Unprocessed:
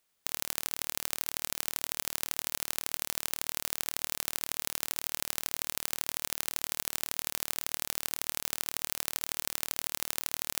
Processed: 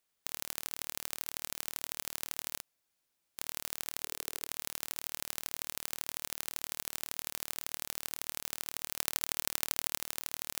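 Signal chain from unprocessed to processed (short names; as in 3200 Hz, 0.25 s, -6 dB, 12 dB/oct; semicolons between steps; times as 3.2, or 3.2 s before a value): 2.62–3.38 room tone; 4.02–4.49 bell 430 Hz +4.5 dB; 8.96–10 transient shaper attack +6 dB, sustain -4 dB; gain -5 dB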